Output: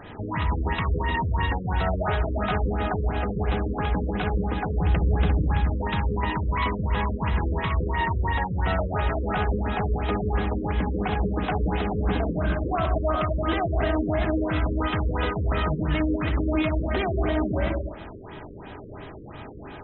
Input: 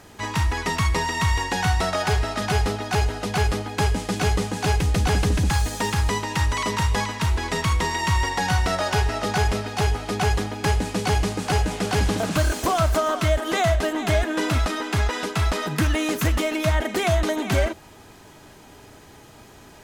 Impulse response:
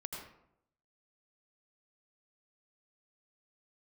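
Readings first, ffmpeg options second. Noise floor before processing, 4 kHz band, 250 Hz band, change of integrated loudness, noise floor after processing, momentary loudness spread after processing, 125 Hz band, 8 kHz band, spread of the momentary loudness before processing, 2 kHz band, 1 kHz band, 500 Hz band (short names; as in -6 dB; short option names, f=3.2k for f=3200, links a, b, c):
-47 dBFS, -10.0 dB, 0.0 dB, -2.5 dB, -40 dBFS, 4 LU, -2.0 dB, under -40 dB, 3 LU, -5.0 dB, -3.0 dB, -2.5 dB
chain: -filter_complex "[0:a]acompressor=threshold=-22dB:ratio=6,alimiter=limit=-22.5dB:level=0:latency=1:release=388,asplit=2[a][b];[1:a]atrim=start_sample=2205,adelay=64[c];[b][c]afir=irnorm=-1:irlink=0,volume=-1dB[d];[a][d]amix=inputs=2:normalize=0,afftfilt=real='re*lt(b*sr/1024,540*pow(4100/540,0.5+0.5*sin(2*PI*2.9*pts/sr)))':imag='im*lt(b*sr/1024,540*pow(4100/540,0.5+0.5*sin(2*PI*2.9*pts/sr)))':win_size=1024:overlap=0.75,volume=5.5dB"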